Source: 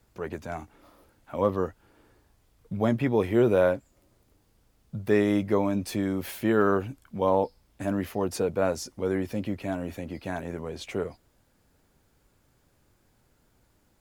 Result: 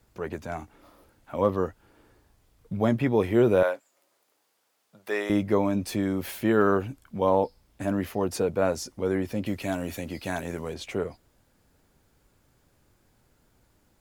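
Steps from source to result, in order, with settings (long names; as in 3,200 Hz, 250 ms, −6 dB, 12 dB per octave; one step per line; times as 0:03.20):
0:03.63–0:05.30: high-pass filter 630 Hz 12 dB per octave
0:09.46–0:10.74: high-shelf EQ 2,700 Hz +10.5 dB
level +1 dB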